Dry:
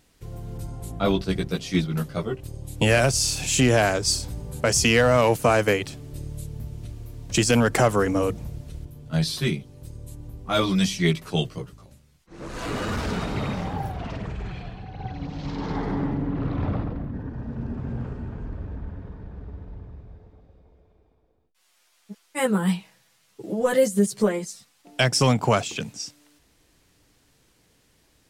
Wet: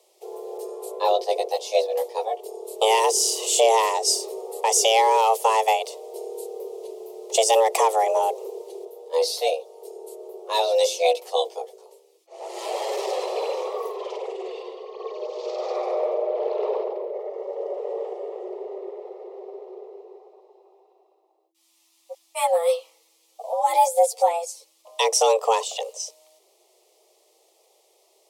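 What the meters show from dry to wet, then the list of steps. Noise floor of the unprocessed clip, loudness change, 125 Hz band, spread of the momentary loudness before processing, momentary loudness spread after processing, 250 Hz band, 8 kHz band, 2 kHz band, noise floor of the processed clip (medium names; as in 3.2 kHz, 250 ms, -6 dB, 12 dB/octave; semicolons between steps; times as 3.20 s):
-64 dBFS, +1.0 dB, under -40 dB, 20 LU, 20 LU, under -15 dB, +2.5 dB, -6.5 dB, -63 dBFS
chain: frequency shift +330 Hz; static phaser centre 640 Hz, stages 4; trim +2.5 dB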